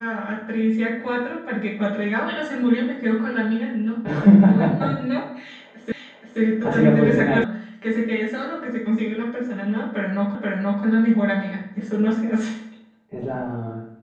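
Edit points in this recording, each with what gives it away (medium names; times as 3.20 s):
5.92 s: repeat of the last 0.48 s
7.44 s: sound stops dead
10.35 s: repeat of the last 0.48 s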